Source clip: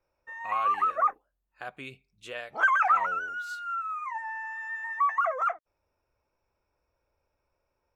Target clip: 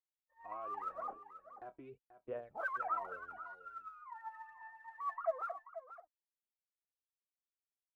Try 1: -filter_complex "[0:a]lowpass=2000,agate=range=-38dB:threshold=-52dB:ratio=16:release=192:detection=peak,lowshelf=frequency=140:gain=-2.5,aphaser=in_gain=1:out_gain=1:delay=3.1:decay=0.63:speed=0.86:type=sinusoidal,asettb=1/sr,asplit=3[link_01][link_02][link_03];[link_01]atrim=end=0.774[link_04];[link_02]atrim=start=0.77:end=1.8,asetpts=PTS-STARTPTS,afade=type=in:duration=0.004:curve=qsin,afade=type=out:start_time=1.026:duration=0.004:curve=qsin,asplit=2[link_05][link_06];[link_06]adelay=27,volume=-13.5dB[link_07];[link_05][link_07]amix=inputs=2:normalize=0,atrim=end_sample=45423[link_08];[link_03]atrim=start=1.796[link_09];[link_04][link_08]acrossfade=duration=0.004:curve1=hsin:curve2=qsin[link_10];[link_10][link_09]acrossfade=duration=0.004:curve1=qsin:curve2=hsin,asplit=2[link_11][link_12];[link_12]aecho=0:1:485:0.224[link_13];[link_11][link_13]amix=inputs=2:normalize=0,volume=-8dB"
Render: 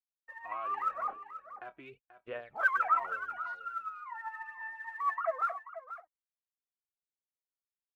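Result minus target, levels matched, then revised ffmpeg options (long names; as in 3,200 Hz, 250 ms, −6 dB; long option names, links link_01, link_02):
2,000 Hz band +3.5 dB
-filter_complex "[0:a]lowpass=720,agate=range=-38dB:threshold=-52dB:ratio=16:release=192:detection=peak,lowshelf=frequency=140:gain=-2.5,aphaser=in_gain=1:out_gain=1:delay=3.1:decay=0.63:speed=0.86:type=sinusoidal,asettb=1/sr,asplit=3[link_01][link_02][link_03];[link_01]atrim=end=0.774[link_04];[link_02]atrim=start=0.77:end=1.8,asetpts=PTS-STARTPTS,afade=type=in:duration=0.004:curve=qsin,afade=type=out:start_time=1.026:duration=0.004:curve=qsin,asplit=2[link_05][link_06];[link_06]adelay=27,volume=-13.5dB[link_07];[link_05][link_07]amix=inputs=2:normalize=0,atrim=end_sample=45423[link_08];[link_03]atrim=start=1.796[link_09];[link_04][link_08]acrossfade=duration=0.004:curve1=hsin:curve2=qsin[link_10];[link_10][link_09]acrossfade=duration=0.004:curve1=qsin:curve2=hsin,asplit=2[link_11][link_12];[link_12]aecho=0:1:485:0.224[link_13];[link_11][link_13]amix=inputs=2:normalize=0,volume=-8dB"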